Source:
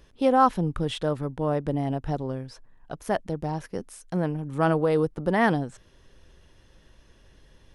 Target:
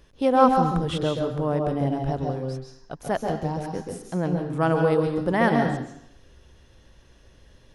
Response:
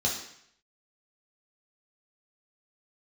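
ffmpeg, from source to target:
-filter_complex "[0:a]asplit=2[a][b];[1:a]atrim=start_sample=2205,adelay=133[c];[b][c]afir=irnorm=-1:irlink=0,volume=-11.5dB[d];[a][d]amix=inputs=2:normalize=0"

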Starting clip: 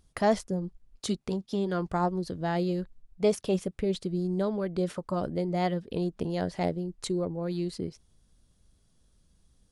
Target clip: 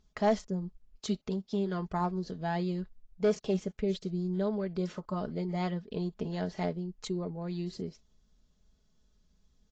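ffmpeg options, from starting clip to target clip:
-af "volume=18dB,asoftclip=hard,volume=-18dB,aecho=1:1:4.7:0.53,volume=-5dB" -ar 16000 -c:a aac -b:a 32k

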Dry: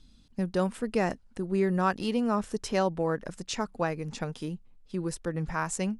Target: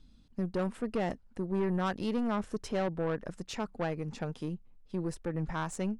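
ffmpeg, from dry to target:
-af "highshelf=f=2.9k:g=-8.5,aeval=exprs='(tanh(20*val(0)+0.4)-tanh(0.4))/20':c=same"

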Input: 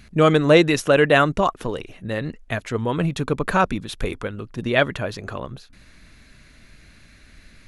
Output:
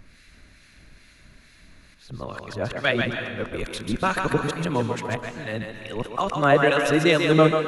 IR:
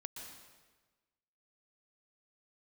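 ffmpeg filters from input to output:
-filter_complex "[0:a]areverse,acrossover=split=1400[a][b];[a]aeval=exprs='val(0)*(1-0.7/2+0.7/2*cos(2*PI*2.3*n/s))':c=same[c];[b]aeval=exprs='val(0)*(1-0.7/2-0.7/2*cos(2*PI*2.3*n/s))':c=same[d];[c][d]amix=inputs=2:normalize=0,asplit=2[e][f];[1:a]atrim=start_sample=2205,lowshelf=f=240:g=-11.5,adelay=140[g];[f][g]afir=irnorm=-1:irlink=0,volume=1dB[h];[e][h]amix=inputs=2:normalize=0"

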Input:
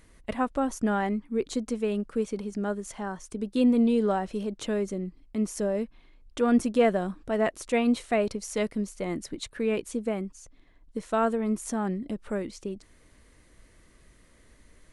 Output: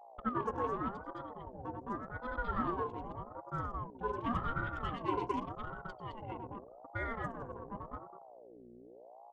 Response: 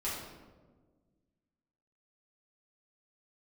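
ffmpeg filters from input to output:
-filter_complex "[0:a]atempo=1.6,bass=f=250:g=1,treble=f=4k:g=7,aecho=1:1:5.2:0.51,aecho=1:1:93.29|215.7:0.708|0.794,flanger=delay=8.3:depth=7.6:regen=79:speed=1.1:shape=triangular,equalizer=f=1.3k:t=o:w=2.8:g=-3.5,asoftclip=type=hard:threshold=-21.5dB,asplit=3[a][b][c];[a]bandpass=f=730:t=q:w=8,volume=0dB[d];[b]bandpass=f=1.09k:t=q:w=8,volume=-6dB[e];[c]bandpass=f=2.44k:t=q:w=8,volume=-9dB[f];[d][e][f]amix=inputs=3:normalize=0,asplit=2[g][h];[1:a]atrim=start_sample=2205[i];[h][i]afir=irnorm=-1:irlink=0,volume=-13dB[j];[g][j]amix=inputs=2:normalize=0,aeval=exprs='val(0)+0.002*(sin(2*PI*60*n/s)+sin(2*PI*2*60*n/s)/2+sin(2*PI*3*60*n/s)/3+sin(2*PI*4*60*n/s)/4+sin(2*PI*5*60*n/s)/5)':c=same,anlmdn=0.0158,aeval=exprs='val(0)*sin(2*PI*530*n/s+530*0.45/0.86*sin(2*PI*0.86*n/s))':c=same,volume=6.5dB"

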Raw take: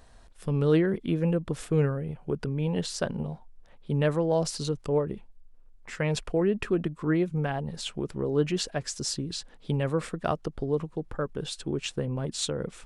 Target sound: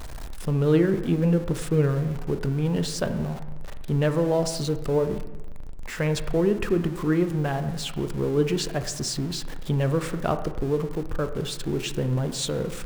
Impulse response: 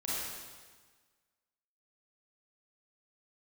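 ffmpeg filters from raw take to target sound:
-filter_complex "[0:a]aeval=exprs='val(0)+0.5*0.0168*sgn(val(0))':c=same,lowshelf=f=80:g=6,asplit=2[a][b];[1:a]atrim=start_sample=2205,asetrate=61740,aresample=44100,lowpass=2k[c];[b][c]afir=irnorm=-1:irlink=0,volume=-8.5dB[d];[a][d]amix=inputs=2:normalize=0"

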